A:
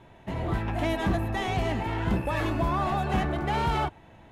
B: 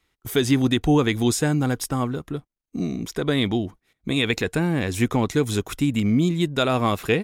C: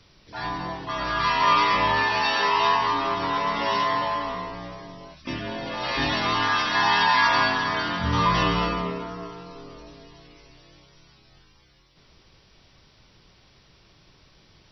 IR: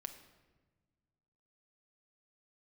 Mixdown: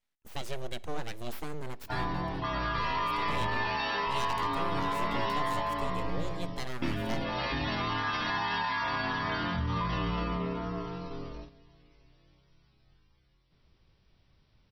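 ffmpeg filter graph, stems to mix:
-filter_complex "[1:a]aeval=exprs='abs(val(0))':c=same,volume=0.141,asplit=2[s0][s1];[s1]volume=0.447[s2];[2:a]lowshelf=f=200:g=9.5,alimiter=limit=0.168:level=0:latency=1,lowpass=4700,adelay=1550,volume=0.891,agate=range=0.2:threshold=0.0112:ratio=16:detection=peak,acompressor=threshold=0.0282:ratio=2.5,volume=1[s3];[3:a]atrim=start_sample=2205[s4];[s2][s4]afir=irnorm=-1:irlink=0[s5];[s0][s3][s5]amix=inputs=3:normalize=0"

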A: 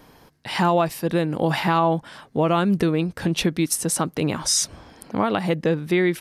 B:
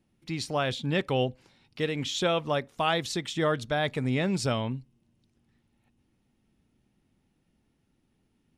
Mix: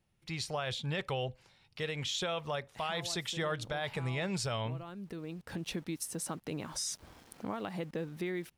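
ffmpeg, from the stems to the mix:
-filter_complex "[0:a]acompressor=threshold=0.0316:ratio=2,aeval=exprs='val(0)*gte(abs(val(0)),0.00531)':c=same,adelay=2300,volume=0.335[s0];[1:a]equalizer=f=270:t=o:w=0.85:g=-14,alimiter=limit=0.0631:level=0:latency=1:release=61,volume=0.841,asplit=2[s1][s2];[s2]apad=whole_len=374943[s3];[s0][s3]sidechaincompress=threshold=0.00891:ratio=8:attack=5.4:release=1150[s4];[s4][s1]amix=inputs=2:normalize=0"

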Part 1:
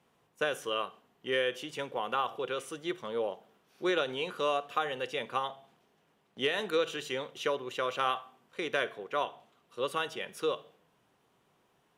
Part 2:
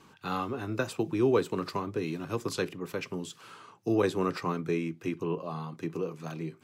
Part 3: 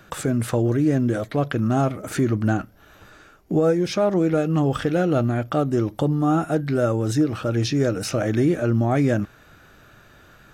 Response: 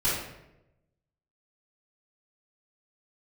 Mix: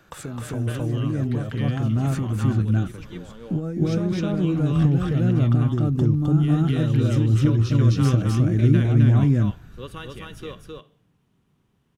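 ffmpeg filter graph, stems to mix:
-filter_complex "[0:a]volume=0.596,asplit=2[s0][s1];[s1]volume=0.708[s2];[1:a]volume=0.316,asplit=2[s3][s4];[2:a]volume=0.447,asplit=2[s5][s6];[s6]volume=0.708[s7];[s4]apad=whole_len=527986[s8];[s0][s8]sidechaincompress=threshold=0.00447:ratio=8:attack=16:release=1090[s9];[s3][s5]amix=inputs=2:normalize=0,acompressor=threshold=0.0282:ratio=4,volume=1[s10];[s2][s7]amix=inputs=2:normalize=0,aecho=0:1:260:1[s11];[s9][s10][s11]amix=inputs=3:normalize=0,asubboost=boost=8.5:cutoff=200"

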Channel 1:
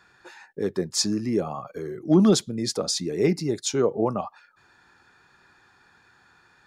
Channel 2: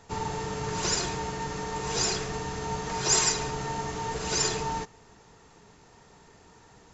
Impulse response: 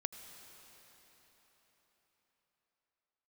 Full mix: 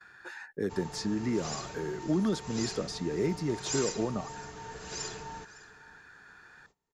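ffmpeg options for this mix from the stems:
-filter_complex "[0:a]equalizer=f=1600:t=o:w=0.58:g=9.5,acrossover=split=420|4900[s0][s1][s2];[s0]acompressor=threshold=0.0501:ratio=4[s3];[s1]acompressor=threshold=0.0126:ratio=4[s4];[s2]acompressor=threshold=0.00316:ratio=4[s5];[s3][s4][s5]amix=inputs=3:normalize=0,volume=0.794[s6];[1:a]adelay=600,volume=0.266,asplit=2[s7][s8];[s8]volume=0.112,aecho=0:1:558:1[s9];[s6][s7][s9]amix=inputs=3:normalize=0,agate=range=0.1:threshold=0.00112:ratio=16:detection=peak"

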